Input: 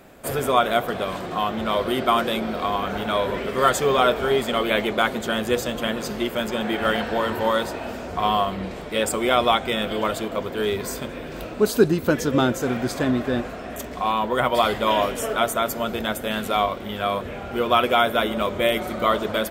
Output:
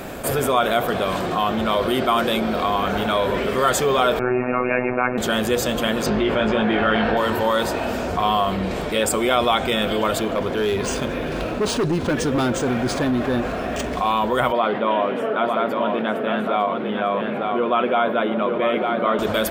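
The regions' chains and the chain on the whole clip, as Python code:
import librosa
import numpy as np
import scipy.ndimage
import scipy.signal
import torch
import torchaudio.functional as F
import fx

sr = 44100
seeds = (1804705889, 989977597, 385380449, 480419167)

y = fx.chain(x, sr, fx.robotise(hz=125.0),
    fx.brickwall_lowpass(high_hz=2800.0), at=(4.19, 5.18))
y = fx.chain(y, sr, fx.lowpass(hz=2900.0, slope=12),
    fx.doubler(ms=19.0, db=-5.5),
    fx.env_flatten(amount_pct=50), at=(6.06, 7.17))
y = fx.chain(y, sr, fx.overload_stage(gain_db=18.5),
    fx.resample_linear(factor=3), at=(10.19, 13.97))
y = fx.chain(y, sr, fx.highpass(hz=170.0, slope=24),
    fx.air_absorb(metres=470.0),
    fx.echo_single(ms=904, db=-7.0), at=(14.52, 19.19))
y = fx.notch(y, sr, hz=2000.0, q=27.0)
y = fx.env_flatten(y, sr, amount_pct=50)
y = F.gain(torch.from_numpy(y), -1.5).numpy()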